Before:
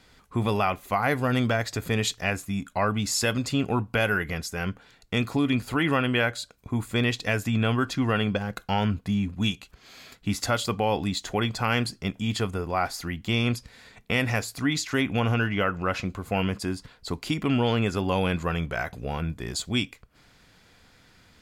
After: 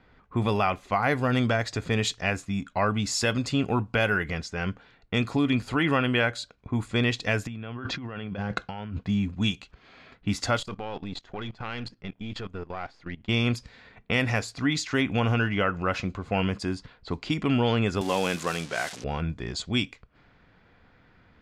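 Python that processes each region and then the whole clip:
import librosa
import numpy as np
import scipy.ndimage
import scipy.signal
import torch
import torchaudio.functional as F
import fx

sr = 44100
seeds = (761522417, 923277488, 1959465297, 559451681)

y = fx.chain(x, sr, fx.highpass(hz=53.0, slope=12),
    fx.over_compress(threshold_db=-34.0, ratio=-1.0),
    fx.air_absorb(metres=79.0), at=(7.47, 9.03))
y = fx.chain(y, sr, fx.halfwave_gain(db=-7.0),
    fx.level_steps(step_db=17), at=(10.59, 13.29))
y = fx.chain(y, sr, fx.crossing_spikes(level_db=-21.5),
    fx.highpass(hz=210.0, slope=12), at=(18.01, 19.04))
y = fx.env_lowpass(y, sr, base_hz=1900.0, full_db=-23.0)
y = scipy.signal.sosfilt(scipy.signal.butter(2, 7400.0, 'lowpass', fs=sr, output='sos'), y)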